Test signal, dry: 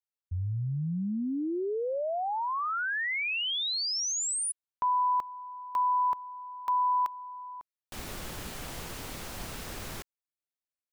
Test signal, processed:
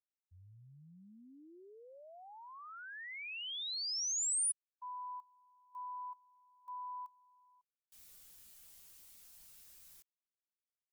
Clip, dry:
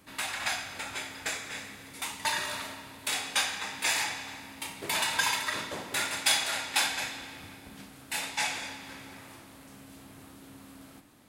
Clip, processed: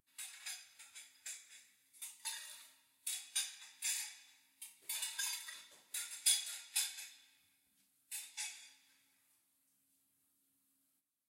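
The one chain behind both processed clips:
first-order pre-emphasis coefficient 0.9
every bin expanded away from the loudest bin 1.5 to 1
level −4.5 dB

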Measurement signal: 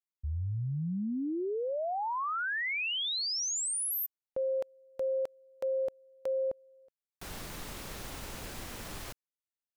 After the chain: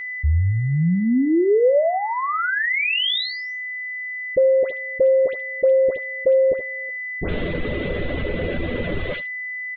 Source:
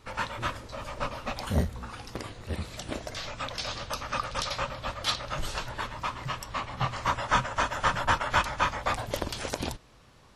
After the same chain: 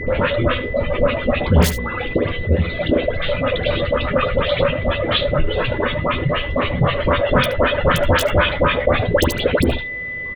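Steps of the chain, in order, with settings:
Butterworth low-pass 3,700 Hz 72 dB per octave
reverb reduction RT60 1.6 s
low shelf with overshoot 680 Hz +7.5 dB, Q 3
in parallel at −4 dB: wrap-around overflow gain 10 dB
on the sum: all-pass dispersion highs, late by 88 ms, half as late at 1,600 Hz
steady tone 2,000 Hz −47 dBFS
double-tracking delay 12 ms −8 dB
single-tap delay 74 ms −18.5 dB
envelope flattener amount 50%

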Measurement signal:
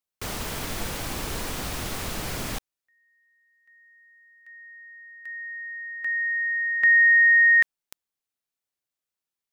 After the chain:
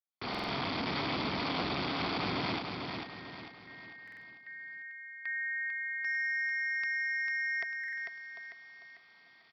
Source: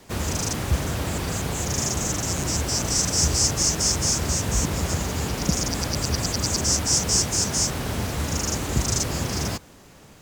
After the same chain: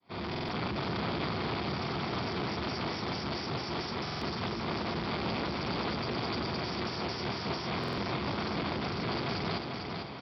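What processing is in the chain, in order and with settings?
fade in at the beginning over 0.61 s
in parallel at +1.5 dB: downward compressor 16 to 1, threshold −27 dBFS
on the sum: brickwall limiter −14 dBFS
parametric band 680 Hz +11 dB 0.3 octaves
comb filter 0.9 ms, depth 65%
hard clipping −26.5 dBFS
amplitude modulation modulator 280 Hz, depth 65%
reversed playback
upward compression, threshold −42 dBFS
reversed playback
high-pass filter 150 Hz 12 dB per octave
repeating echo 447 ms, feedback 42%, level −5 dB
downsampling to 11,025 Hz
buffer that repeats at 0:00.30/0:04.03/0:07.79, samples 2,048, times 3

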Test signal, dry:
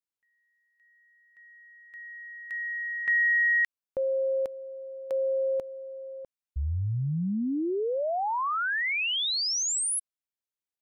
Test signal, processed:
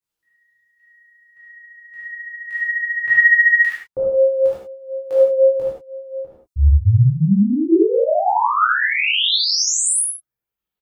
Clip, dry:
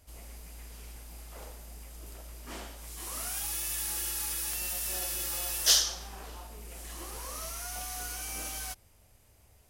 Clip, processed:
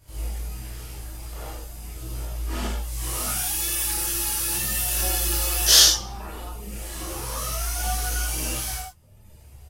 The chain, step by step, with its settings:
low-shelf EQ 220 Hz +6 dB
reverb whose tail is shaped and stops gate 130 ms flat, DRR −6.5 dB
reverb reduction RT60 0.91 s
on a send: ambience of single reflections 58 ms −8 dB, 73 ms −4 dB
on the sum: micro pitch shift up and down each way 13 cents
level +5.5 dB

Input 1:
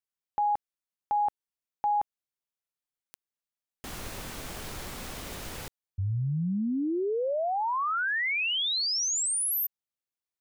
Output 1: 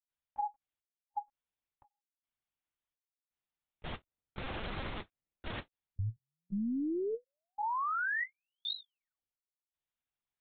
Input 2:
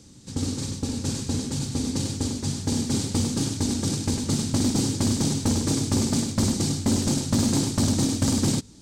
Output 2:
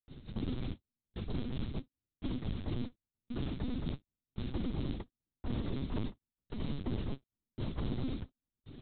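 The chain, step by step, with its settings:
dynamic equaliser 400 Hz, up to −4 dB, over −39 dBFS, Q 1.7
reversed playback
downward compressor 8 to 1, threshold −33 dBFS
reversed playback
gate pattern ".xxxxxxxx..." 168 BPM −60 dB
linear-prediction vocoder at 8 kHz pitch kept
every ending faded ahead of time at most 520 dB per second
level +1 dB

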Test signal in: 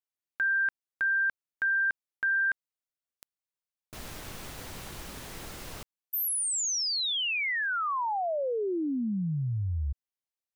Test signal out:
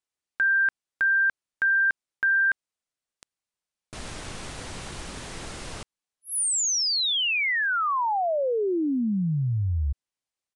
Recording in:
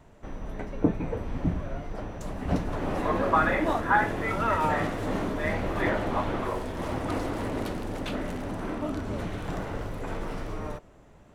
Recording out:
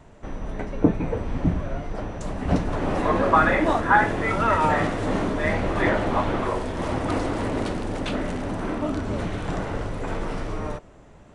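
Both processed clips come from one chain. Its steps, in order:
downsampling to 22,050 Hz
level +5 dB

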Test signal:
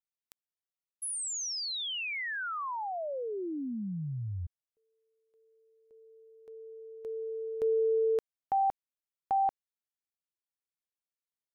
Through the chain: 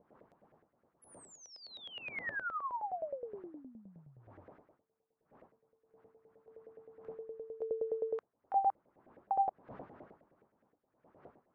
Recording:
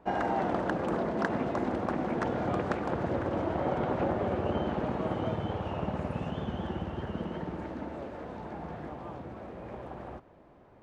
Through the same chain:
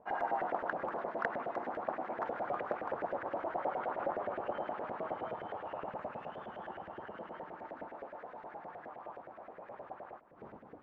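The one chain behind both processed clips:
wind on the microphone 240 Hz −46 dBFS
auto-filter band-pass saw up 9.6 Hz 550–2,000 Hz
level +1 dB

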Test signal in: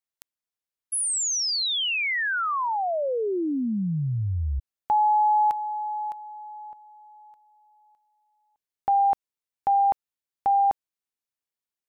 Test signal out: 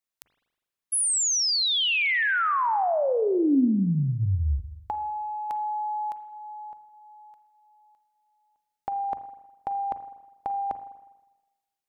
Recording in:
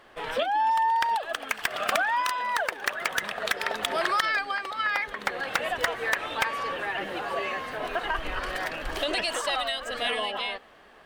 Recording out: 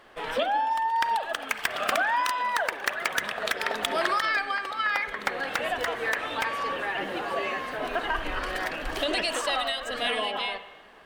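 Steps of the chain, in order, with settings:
mains-hum notches 60/120 Hz
compressor whose output falls as the input rises −24 dBFS, ratio −0.5
dynamic equaliser 270 Hz, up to +5 dB, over −48 dBFS, Q 3.3
spring reverb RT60 1.1 s, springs 40/51 ms, chirp 65 ms, DRR 11 dB

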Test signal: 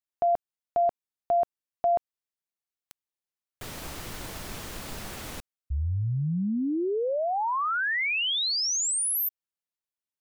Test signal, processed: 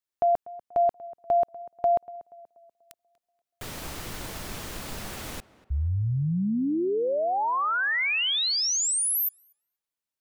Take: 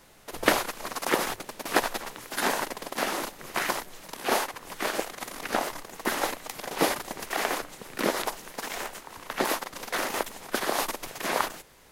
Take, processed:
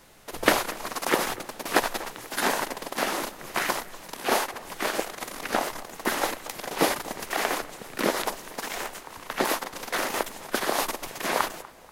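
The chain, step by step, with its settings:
tape delay 241 ms, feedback 47%, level −18 dB, low-pass 1,800 Hz
level +1.5 dB

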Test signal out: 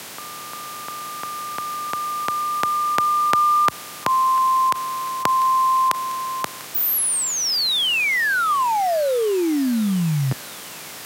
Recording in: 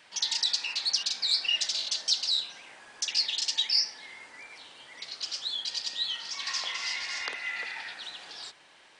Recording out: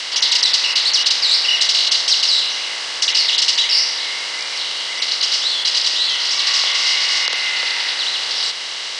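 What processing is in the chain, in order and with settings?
compressor on every frequency bin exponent 0.4
dynamic equaliser 6,800 Hz, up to −4 dB, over −40 dBFS, Q 2.6
frequency shifter +49 Hz
on a send: feedback echo with a high-pass in the loop 695 ms, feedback 80%, high-pass 940 Hz, level −23 dB
on the sum: boost into a limiter +8.5 dB
level −1 dB

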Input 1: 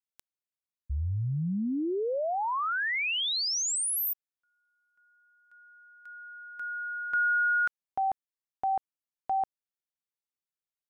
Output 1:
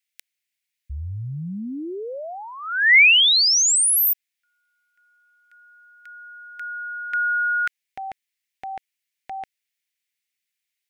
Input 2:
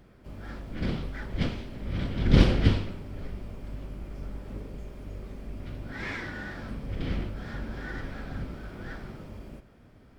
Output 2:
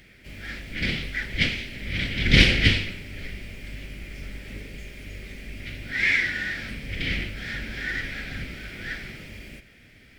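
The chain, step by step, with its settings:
high shelf with overshoot 1,500 Hz +11.5 dB, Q 3

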